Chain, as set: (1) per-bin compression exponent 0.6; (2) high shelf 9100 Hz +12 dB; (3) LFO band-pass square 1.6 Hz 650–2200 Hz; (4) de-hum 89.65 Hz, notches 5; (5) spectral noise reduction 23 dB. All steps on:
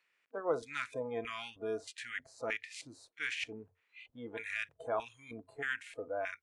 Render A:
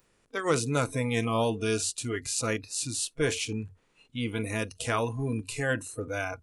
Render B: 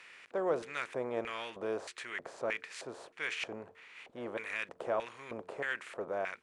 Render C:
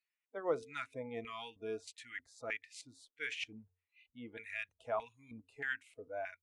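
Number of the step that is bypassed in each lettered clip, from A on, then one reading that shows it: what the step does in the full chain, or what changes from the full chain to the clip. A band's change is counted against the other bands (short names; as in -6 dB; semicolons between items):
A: 3, 125 Hz band +15.0 dB; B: 5, 250 Hz band +2.5 dB; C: 1, crest factor change +1.5 dB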